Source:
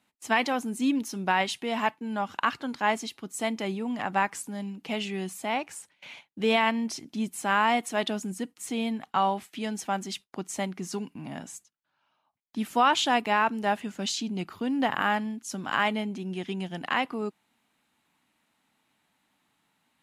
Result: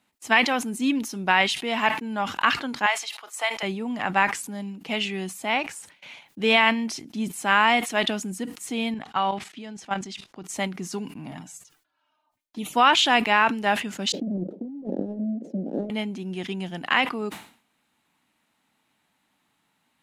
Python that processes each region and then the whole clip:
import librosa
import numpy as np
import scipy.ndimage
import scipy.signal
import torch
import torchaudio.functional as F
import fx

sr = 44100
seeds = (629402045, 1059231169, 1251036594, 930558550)

y = fx.chain(x, sr, fx.highpass(hz=690.0, slope=24),
    fx.high_shelf(hz=4500.0, db=-3.0),
    fx.band_squash(depth_pct=70), at=(2.86, 3.63))
y = fx.chain(y, sr, fx.lowpass(hz=6600.0, slope=12),
    fx.level_steps(step_db=13), at=(8.94, 10.44))
y = fx.chain(y, sr, fx.env_flanger(rest_ms=3.3, full_db=-29.0),
    fx.comb(ms=6.6, depth=0.46), at=(11.31, 12.74))
y = fx.chain(y, sr, fx.halfwave_hold(),
    fx.ellip_bandpass(low_hz=190.0, high_hz=560.0, order=3, stop_db=40),
    fx.over_compress(threshold_db=-30.0, ratio=-0.5), at=(14.12, 15.9))
y = fx.dynamic_eq(y, sr, hz=2500.0, q=0.73, threshold_db=-40.0, ratio=4.0, max_db=7)
y = fx.sustainer(y, sr, db_per_s=120.0)
y = y * 10.0 ** (1.5 / 20.0)